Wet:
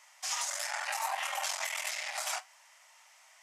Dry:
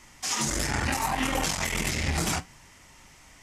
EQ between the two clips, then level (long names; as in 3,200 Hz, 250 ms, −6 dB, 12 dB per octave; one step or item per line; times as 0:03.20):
linear-phase brick-wall high-pass 560 Hz
−5.5 dB